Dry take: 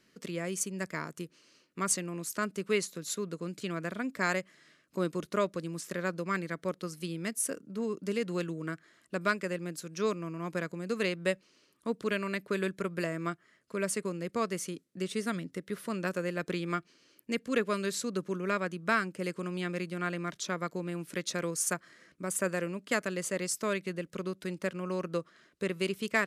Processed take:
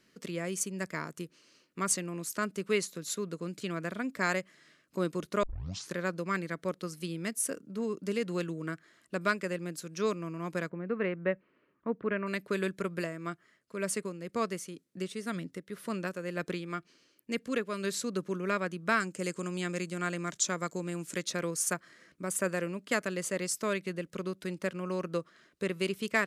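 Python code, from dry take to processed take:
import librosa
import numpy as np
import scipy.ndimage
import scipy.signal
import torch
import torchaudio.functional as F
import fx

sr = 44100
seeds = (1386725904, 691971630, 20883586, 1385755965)

y = fx.lowpass(x, sr, hz=2100.0, slope=24, at=(10.68, 12.26), fade=0.02)
y = fx.tremolo(y, sr, hz=2.0, depth=0.47, at=(12.93, 17.84))
y = fx.peak_eq(y, sr, hz=7200.0, db=13.5, octaves=0.6, at=(19.0, 21.23))
y = fx.edit(y, sr, fx.tape_start(start_s=5.43, length_s=0.51), tone=tone)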